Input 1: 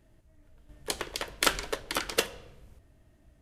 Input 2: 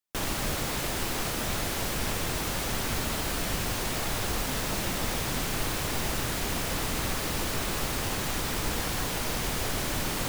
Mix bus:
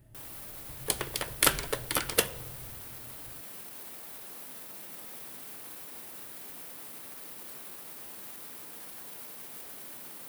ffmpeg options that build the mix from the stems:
ffmpeg -i stem1.wav -i stem2.wav -filter_complex "[0:a]equalizer=frequency=120:width=2.3:gain=14.5,volume=-0.5dB[link_01];[1:a]highpass=210,alimiter=level_in=4.5dB:limit=-24dB:level=0:latency=1:release=64,volume=-4.5dB,volume=-13dB[link_02];[link_01][link_02]amix=inputs=2:normalize=0,aexciter=amount=4:drive=3.3:freq=9000" out.wav

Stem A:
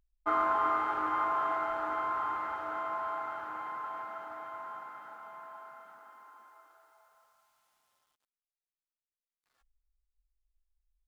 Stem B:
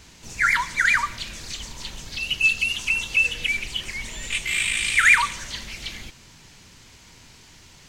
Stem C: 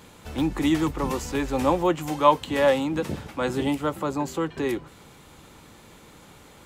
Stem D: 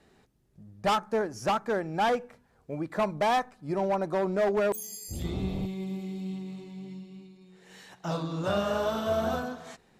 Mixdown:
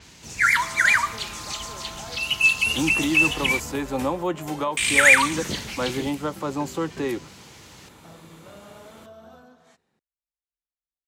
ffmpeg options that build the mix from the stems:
ffmpeg -i stem1.wav -i stem2.wav -i stem3.wav -i stem4.wav -filter_complex "[0:a]equalizer=frequency=580:width_type=o:width=3:gain=11,adelay=350,volume=-18.5dB[link_01];[1:a]volume=1dB,asplit=3[link_02][link_03][link_04];[link_02]atrim=end=3.6,asetpts=PTS-STARTPTS,afade=type=out:start_time=3.596:duration=0.004:curve=hsin[link_05];[link_03]atrim=start=3.6:end=4.77,asetpts=PTS-STARTPTS,volume=0[link_06];[link_04]atrim=start=4.77,asetpts=PTS-STARTPTS,afade=type=in:duration=0.004:curve=hsin[link_07];[link_05][link_06][link_07]concat=n=3:v=0:a=1[link_08];[2:a]alimiter=limit=-16dB:level=0:latency=1:release=299,adelay=2400,volume=0dB[link_09];[3:a]acompressor=threshold=-37dB:ratio=2,volume=-11.5dB[link_10];[link_01][link_08][link_09][link_10]amix=inputs=4:normalize=0,highpass=66,adynamicequalizer=threshold=0.0141:dfrequency=7700:dqfactor=0.7:tfrequency=7700:tqfactor=0.7:attack=5:release=100:ratio=0.375:range=3:mode=boostabove:tftype=highshelf" out.wav

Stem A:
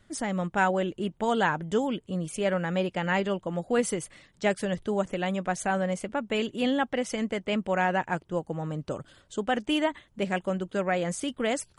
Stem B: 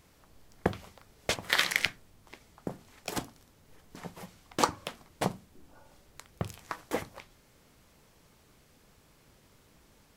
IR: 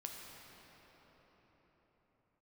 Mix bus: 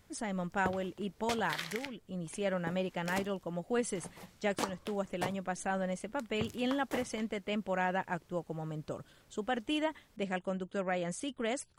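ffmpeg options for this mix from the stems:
-filter_complex "[0:a]volume=-7dB[link_01];[1:a]volume=-5.5dB[link_02];[link_01][link_02]amix=inputs=2:normalize=0,alimiter=limit=-20dB:level=0:latency=1:release=467"

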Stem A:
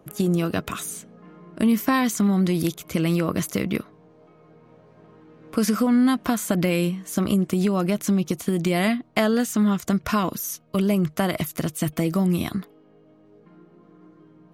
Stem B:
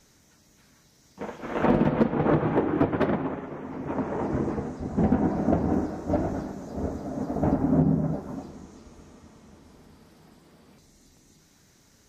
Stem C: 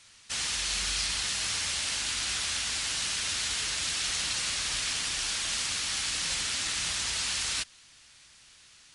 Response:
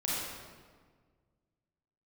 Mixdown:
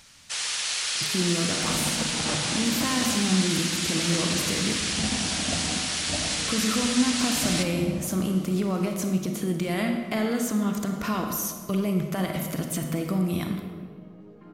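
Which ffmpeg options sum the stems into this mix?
-filter_complex "[0:a]acompressor=threshold=-28dB:ratio=1.5,adelay=950,volume=1dB,asplit=2[link_01][link_02];[link_02]volume=-12.5dB[link_03];[1:a]equalizer=frequency=380:width_type=o:width=0.89:gain=-11.5,acompressor=mode=upward:threshold=-46dB:ratio=2.5,volume=-7dB,asplit=2[link_04][link_05];[link_05]volume=-11dB[link_06];[2:a]highpass=frequency=400:width=0.5412,highpass=frequency=400:width=1.3066,volume=0dB,asplit=2[link_07][link_08];[link_08]volume=-11dB[link_09];[link_01][link_04]amix=inputs=2:normalize=0,alimiter=limit=-22dB:level=0:latency=1:release=174,volume=0dB[link_10];[3:a]atrim=start_sample=2205[link_11];[link_03][link_06][link_09]amix=inputs=3:normalize=0[link_12];[link_12][link_11]afir=irnorm=-1:irlink=0[link_13];[link_07][link_10][link_13]amix=inputs=3:normalize=0"

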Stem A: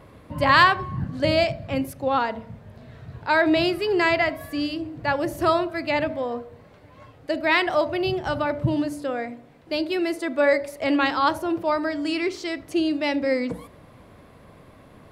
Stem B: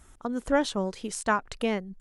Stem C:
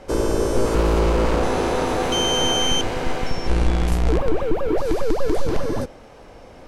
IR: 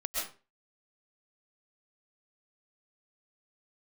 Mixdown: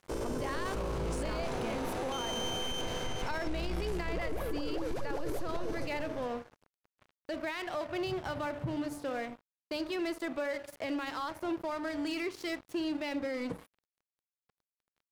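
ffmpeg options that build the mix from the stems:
-filter_complex "[0:a]volume=-3dB[link_01];[1:a]volume=-3dB[link_02];[2:a]volume=-10dB,asplit=2[link_03][link_04];[link_04]volume=-8.5dB[link_05];[link_01][link_02]amix=inputs=2:normalize=0,acompressor=threshold=-28dB:ratio=6,volume=0dB[link_06];[link_05]aecho=0:1:410:1[link_07];[link_03][link_06][link_07]amix=inputs=3:normalize=0,aeval=exprs='sgn(val(0))*max(abs(val(0))-0.0075,0)':channel_layout=same,alimiter=level_in=2.5dB:limit=-24dB:level=0:latency=1:release=13,volume=-2.5dB"

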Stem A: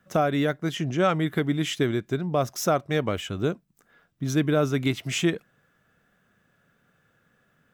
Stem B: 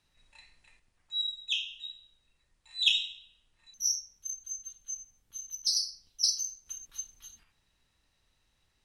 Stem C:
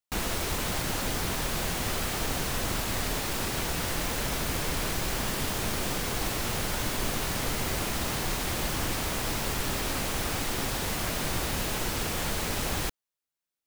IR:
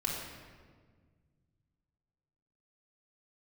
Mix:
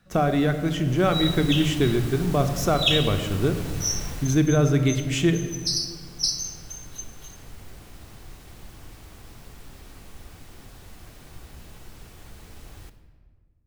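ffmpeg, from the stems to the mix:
-filter_complex "[0:a]volume=-3.5dB,asplit=2[link_01][link_02];[link_02]volume=-8dB[link_03];[1:a]volume=0dB,asplit=2[link_04][link_05];[link_05]volume=-8.5dB[link_06];[2:a]volume=-11dB,afade=type=in:start_time=0.88:duration=0.39:silence=0.354813,afade=type=out:start_time=4.09:duration=0.41:silence=0.281838,asplit=2[link_07][link_08];[link_08]volume=-10dB[link_09];[3:a]atrim=start_sample=2205[link_10];[link_03][link_06][link_09]amix=inputs=3:normalize=0[link_11];[link_11][link_10]afir=irnorm=-1:irlink=0[link_12];[link_01][link_04][link_07][link_12]amix=inputs=4:normalize=0,lowshelf=frequency=180:gain=9"

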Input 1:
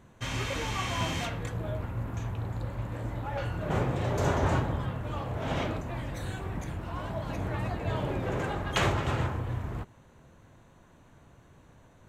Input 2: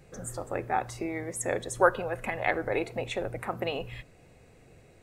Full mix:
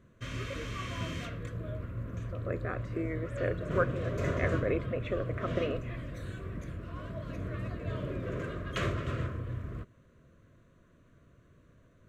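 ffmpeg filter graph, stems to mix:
ffmpeg -i stem1.wav -i stem2.wav -filter_complex "[0:a]highshelf=frequency=2800:gain=-8,volume=-4dB[link_01];[1:a]lowpass=1800,dynaudnorm=framelen=290:gausssize=3:maxgain=11.5dB,adelay=1950,volume=-11.5dB[link_02];[link_01][link_02]amix=inputs=2:normalize=0,asuperstop=centerf=830:order=4:qfactor=2" out.wav

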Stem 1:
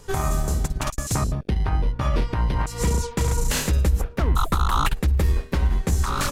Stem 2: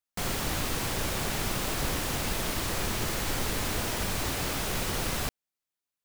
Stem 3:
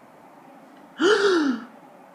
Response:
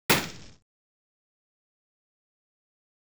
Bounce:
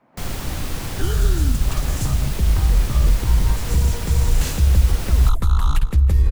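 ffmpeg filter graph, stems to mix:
-filter_complex "[0:a]adelay=900,volume=-4dB,asplit=2[link_01][link_02];[link_02]volume=-17.5dB[link_03];[1:a]volume=-0.5dB[link_04];[2:a]lowpass=4000,dynaudnorm=framelen=120:gausssize=3:maxgain=15dB,volume=-12.5dB[link_05];[link_03]aecho=0:1:159|318|477|636|795:1|0.36|0.13|0.0467|0.0168[link_06];[link_01][link_04][link_05][link_06]amix=inputs=4:normalize=0,lowshelf=frequency=140:gain=11.5,acrossover=split=160|3000[link_07][link_08][link_09];[link_08]acompressor=threshold=-29dB:ratio=6[link_10];[link_07][link_10][link_09]amix=inputs=3:normalize=0"

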